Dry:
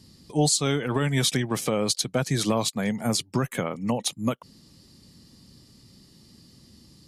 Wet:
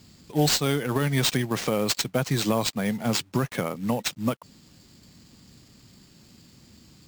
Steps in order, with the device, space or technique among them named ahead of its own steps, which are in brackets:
early companding sampler (sample-rate reduction 12,000 Hz, jitter 0%; log-companded quantiser 6 bits)

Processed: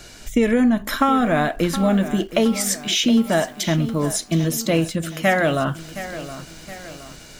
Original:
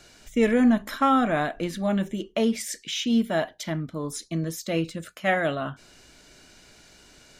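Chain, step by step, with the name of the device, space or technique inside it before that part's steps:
ASMR close-microphone chain (low-shelf EQ 120 Hz +6 dB; downward compressor 6 to 1, threshold −23 dBFS, peak gain reduction 9 dB; high-shelf EQ 9,900 Hz +6 dB)
feedback echo at a low word length 718 ms, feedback 55%, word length 8 bits, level −13 dB
level +9 dB

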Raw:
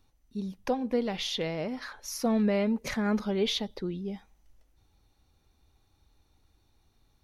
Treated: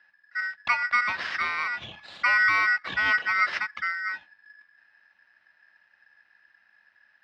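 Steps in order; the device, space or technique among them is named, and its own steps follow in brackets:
0:01.84–0:03.53: dynamic equaliser 4,000 Hz, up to −8 dB, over −53 dBFS, Q 1.1
ring modulator pedal into a guitar cabinet (ring modulator with a square carrier 1,700 Hz; loudspeaker in its box 81–3,600 Hz, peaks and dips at 140 Hz −6 dB, 280 Hz −6 dB, 430 Hz −10 dB)
level +5 dB

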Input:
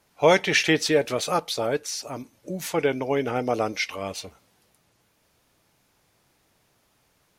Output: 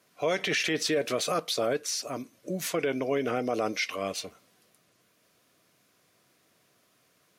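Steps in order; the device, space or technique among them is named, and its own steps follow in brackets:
PA system with an anti-feedback notch (high-pass filter 150 Hz 12 dB per octave; Butterworth band-reject 860 Hz, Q 5.5; brickwall limiter −18.5 dBFS, peak gain reduction 11 dB)

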